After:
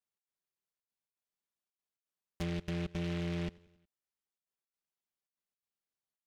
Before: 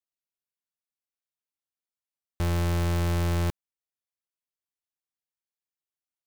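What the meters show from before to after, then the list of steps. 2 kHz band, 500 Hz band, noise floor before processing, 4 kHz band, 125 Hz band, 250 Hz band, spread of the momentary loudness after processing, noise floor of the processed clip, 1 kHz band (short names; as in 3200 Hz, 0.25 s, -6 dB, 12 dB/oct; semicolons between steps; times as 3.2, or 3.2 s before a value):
-8.5 dB, -8.0 dB, under -85 dBFS, -7.5 dB, -12.0 dB, -5.5 dB, 5 LU, under -85 dBFS, -15.0 dB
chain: one diode to ground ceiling -36 dBFS; HPF 51 Hz; step gate "xx.xxxxxx." 168 bpm; comb 5.1 ms, depth 92%; treble ducked by the level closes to 540 Hz, closed at -28.5 dBFS; feedback echo 91 ms, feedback 57%, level -22 dB; noise-modulated delay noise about 2200 Hz, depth 0.14 ms; gain -4 dB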